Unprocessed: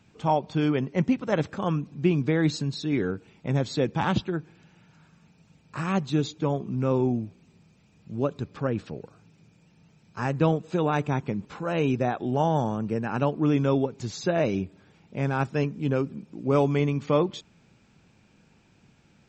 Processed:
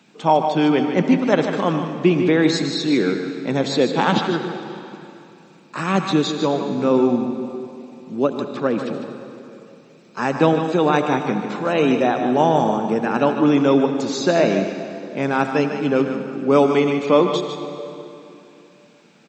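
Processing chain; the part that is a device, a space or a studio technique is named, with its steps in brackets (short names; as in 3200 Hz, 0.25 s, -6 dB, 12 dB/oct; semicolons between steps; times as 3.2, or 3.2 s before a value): PA in a hall (HPF 190 Hz 24 dB/oct; bell 3800 Hz +4 dB 0.28 oct; echo 0.151 s -8.5 dB; reverb RT60 2.9 s, pre-delay 68 ms, DRR 8 dB); gain +8 dB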